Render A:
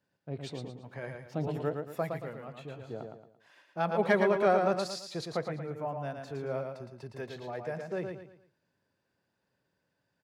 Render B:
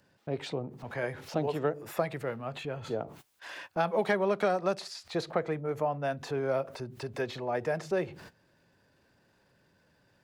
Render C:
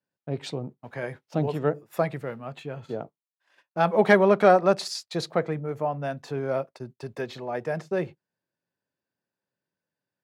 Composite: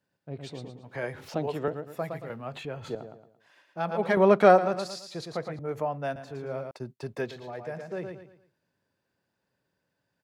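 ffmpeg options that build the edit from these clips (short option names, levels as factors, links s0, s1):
-filter_complex "[1:a]asplit=3[s0][s1][s2];[2:a]asplit=2[s3][s4];[0:a]asplit=6[s5][s6][s7][s8][s9][s10];[s5]atrim=end=0.942[s11];[s0]atrim=start=0.938:end=1.682[s12];[s6]atrim=start=1.678:end=2.302[s13];[s1]atrim=start=2.298:end=2.952[s14];[s7]atrim=start=2.948:end=4.172[s15];[s3]atrim=start=4.168:end=4.582[s16];[s8]atrim=start=4.578:end=5.592[s17];[s2]atrim=start=5.588:end=6.162[s18];[s9]atrim=start=6.158:end=6.712[s19];[s4]atrim=start=6.708:end=7.312[s20];[s10]atrim=start=7.308[s21];[s11][s12]acrossfade=d=0.004:c1=hsin:c2=hsin[s22];[s22][s13]acrossfade=d=0.004:c1=hsin:c2=hsin[s23];[s23][s14]acrossfade=d=0.004:c1=hsin:c2=hsin[s24];[s24][s15]acrossfade=d=0.004:c1=hsin:c2=hsin[s25];[s25][s16]acrossfade=d=0.004:c1=hsin:c2=hsin[s26];[s26][s17]acrossfade=d=0.004:c1=hsin:c2=hsin[s27];[s27][s18]acrossfade=d=0.004:c1=hsin:c2=hsin[s28];[s28][s19]acrossfade=d=0.004:c1=hsin:c2=hsin[s29];[s29][s20]acrossfade=d=0.004:c1=hsin:c2=hsin[s30];[s30][s21]acrossfade=d=0.004:c1=hsin:c2=hsin"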